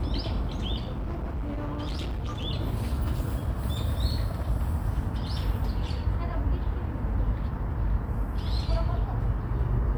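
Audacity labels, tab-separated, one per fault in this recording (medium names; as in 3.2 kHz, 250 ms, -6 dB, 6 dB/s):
0.770000	2.450000	clipped -28 dBFS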